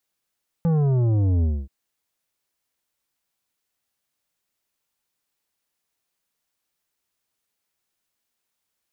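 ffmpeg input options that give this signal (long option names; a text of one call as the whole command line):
ffmpeg -f lavfi -i "aevalsrc='0.126*clip((1.03-t)/0.25,0,1)*tanh(3.16*sin(2*PI*170*1.03/log(65/170)*(exp(log(65/170)*t/1.03)-1)))/tanh(3.16)':duration=1.03:sample_rate=44100" out.wav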